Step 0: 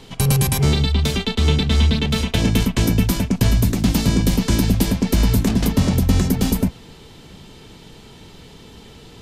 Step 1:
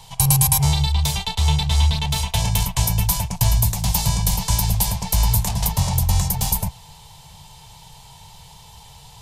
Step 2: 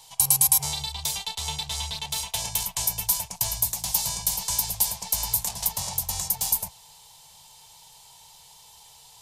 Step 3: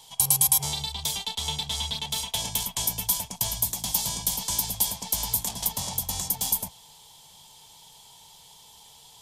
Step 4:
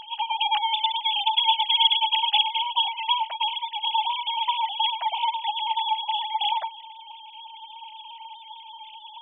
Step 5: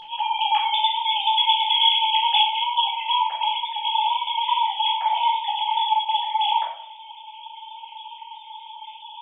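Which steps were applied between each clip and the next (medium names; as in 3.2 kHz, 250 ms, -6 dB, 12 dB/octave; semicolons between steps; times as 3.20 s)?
FFT filter 150 Hz 0 dB, 280 Hz -29 dB, 920 Hz +9 dB, 1.3 kHz -8 dB, 10 kHz +9 dB; trim -1 dB
tone controls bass -13 dB, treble +8 dB; trim -8.5 dB
small resonant body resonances 270/3300 Hz, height 15 dB, ringing for 30 ms; trim -1.5 dB
formants replaced by sine waves; trim +3.5 dB
simulated room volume 900 m³, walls furnished, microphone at 4.1 m; trim -3 dB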